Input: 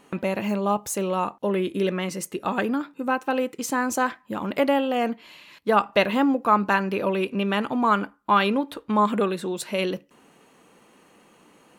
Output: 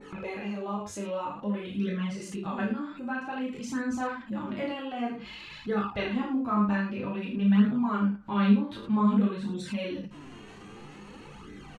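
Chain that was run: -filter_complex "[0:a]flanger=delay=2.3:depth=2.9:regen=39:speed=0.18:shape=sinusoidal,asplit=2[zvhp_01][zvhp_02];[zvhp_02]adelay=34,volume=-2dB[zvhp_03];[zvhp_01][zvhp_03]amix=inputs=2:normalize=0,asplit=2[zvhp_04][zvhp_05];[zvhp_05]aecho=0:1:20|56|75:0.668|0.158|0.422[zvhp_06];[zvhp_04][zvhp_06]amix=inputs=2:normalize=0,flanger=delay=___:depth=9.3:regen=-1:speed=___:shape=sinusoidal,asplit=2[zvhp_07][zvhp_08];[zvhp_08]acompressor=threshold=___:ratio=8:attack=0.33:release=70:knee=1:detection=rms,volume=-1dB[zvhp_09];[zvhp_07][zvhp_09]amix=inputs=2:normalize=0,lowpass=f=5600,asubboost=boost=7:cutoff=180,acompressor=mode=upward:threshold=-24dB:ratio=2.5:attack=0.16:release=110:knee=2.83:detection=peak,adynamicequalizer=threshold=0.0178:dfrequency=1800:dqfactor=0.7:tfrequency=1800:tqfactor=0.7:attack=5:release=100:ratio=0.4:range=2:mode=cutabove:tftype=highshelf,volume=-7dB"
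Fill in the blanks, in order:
0.5, 0.52, -36dB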